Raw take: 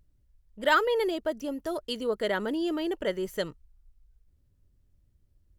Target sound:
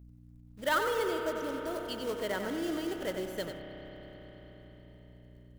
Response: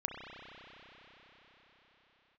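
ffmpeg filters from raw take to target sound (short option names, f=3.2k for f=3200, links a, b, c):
-filter_complex "[0:a]acrusher=bits=3:mode=log:mix=0:aa=0.000001,aeval=exprs='val(0)+0.00562*(sin(2*PI*60*n/s)+sin(2*PI*2*60*n/s)/2+sin(2*PI*3*60*n/s)/3+sin(2*PI*4*60*n/s)/4+sin(2*PI*5*60*n/s)/5)':c=same,asplit=2[a][b];[1:a]atrim=start_sample=2205,adelay=93[c];[b][c]afir=irnorm=-1:irlink=0,volume=-6dB[d];[a][d]amix=inputs=2:normalize=0,volume=-6.5dB"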